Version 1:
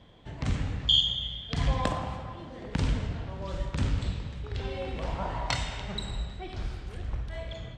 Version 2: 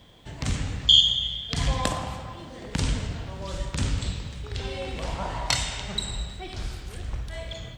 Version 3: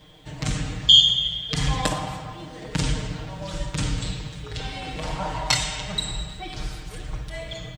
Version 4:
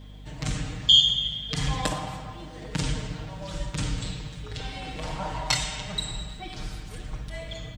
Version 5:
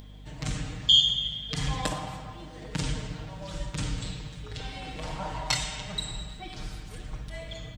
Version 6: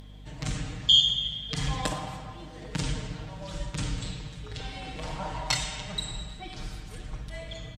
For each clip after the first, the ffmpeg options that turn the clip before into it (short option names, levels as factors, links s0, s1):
-af "aemphasis=mode=production:type=75fm,volume=1.26"
-af "aecho=1:1:6.5:0.94"
-af "aeval=exprs='val(0)+0.0112*(sin(2*PI*50*n/s)+sin(2*PI*2*50*n/s)/2+sin(2*PI*3*50*n/s)/3+sin(2*PI*4*50*n/s)/4+sin(2*PI*5*50*n/s)/5)':c=same,volume=0.668"
-af "acompressor=mode=upward:threshold=0.00708:ratio=2.5,volume=0.75"
-af "aresample=32000,aresample=44100"